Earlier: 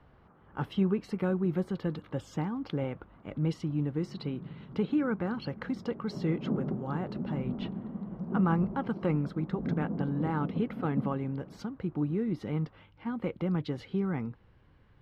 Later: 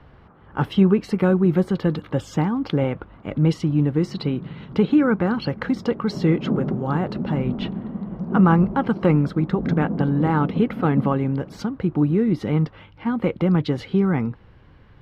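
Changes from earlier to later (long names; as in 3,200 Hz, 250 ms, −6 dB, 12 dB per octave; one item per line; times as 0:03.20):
speech +11.5 dB
background +8.5 dB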